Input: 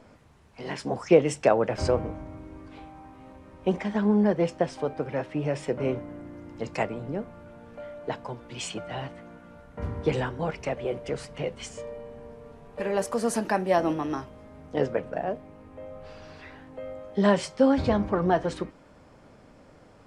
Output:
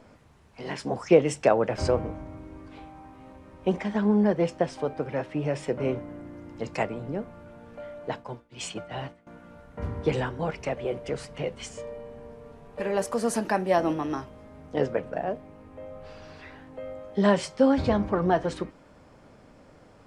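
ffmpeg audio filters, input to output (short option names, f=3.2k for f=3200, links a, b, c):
-filter_complex "[0:a]asettb=1/sr,asplit=3[a][b][c];[a]atrim=end=8.084[d];[b]atrim=start=8.08:end=9.27,asetpts=PTS-STARTPTS,afade=t=in:d=0.004:c=qsin,afade=t=out:st=1.186:d=0.004:c=qsin,agate=range=-33dB:threshold=-33dB:ratio=3:detection=peak[e];[c]atrim=start=9.266[f];[d][e]acrossfade=d=0.004:c1=hsin:c2=qsin[g];[g][f]acrossfade=d=0.004:c1=qsin:c2=hsin"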